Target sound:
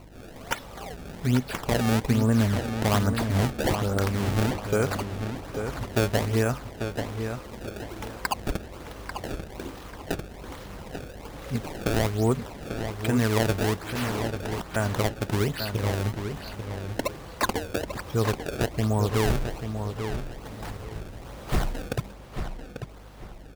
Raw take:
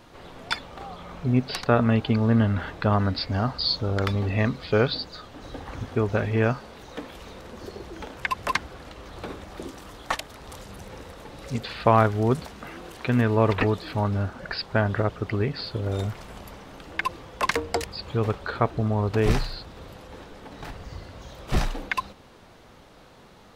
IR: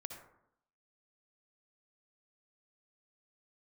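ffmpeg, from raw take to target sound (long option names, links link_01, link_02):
-filter_complex "[0:a]alimiter=limit=-13dB:level=0:latency=1:release=228,acrusher=samples=25:mix=1:aa=0.000001:lfo=1:lforange=40:lforate=1.2,aeval=exprs='val(0)+0.00355*(sin(2*PI*50*n/s)+sin(2*PI*2*50*n/s)/2+sin(2*PI*3*50*n/s)/3+sin(2*PI*4*50*n/s)/4+sin(2*PI*5*50*n/s)/5)':channel_layout=same,asettb=1/sr,asplit=3[link_01][link_02][link_03];[link_01]atrim=end=13.814[link_04];[link_02]atrim=start=13.81:end=14.76,asetpts=PTS-STARTPTS,afade=type=in:duration=0.004:curve=qsin,afade=type=out:start_time=0.946:duration=0.004:curve=qsin,aeval=exprs='(mod(23.7*val(0)+1,2)-1)/23.7':channel_layout=same[link_05];[link_03]atrim=start=14.756[link_06];[link_04][link_05]acrossfade=duration=0.004:curve1=hsin:curve2=qsin[link_07];[link_07][link_06]acrossfade=duration=0.004:curve1=qsin:curve2=hsin,asplit=2[link_08][link_09];[link_09]adelay=842,lowpass=frequency=4900:poles=1,volume=-7.5dB,asplit=2[link_10][link_11];[link_11]adelay=842,lowpass=frequency=4900:poles=1,volume=0.28,asplit=2[link_12][link_13];[link_13]adelay=842,lowpass=frequency=4900:poles=1,volume=0.28[link_14];[link_10][link_12][link_14]amix=inputs=3:normalize=0[link_15];[link_08][link_15]amix=inputs=2:normalize=0"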